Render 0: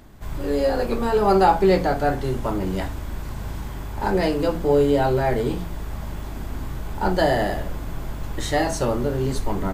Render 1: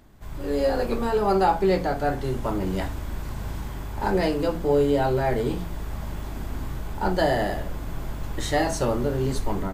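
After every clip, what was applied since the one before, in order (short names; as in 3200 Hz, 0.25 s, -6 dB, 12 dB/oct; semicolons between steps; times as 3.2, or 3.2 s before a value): AGC gain up to 5.5 dB; gain -6.5 dB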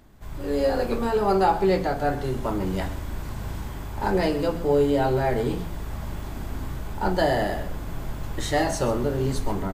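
echo 0.13 s -15 dB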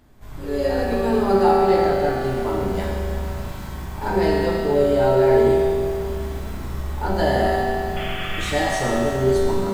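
painted sound noise, 7.96–8.53, 1100–3500 Hz -33 dBFS; reverb RT60 2.4 s, pre-delay 5 ms, DRR -4.5 dB; lo-fi delay 0.334 s, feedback 55%, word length 6-bit, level -14 dB; gain -2.5 dB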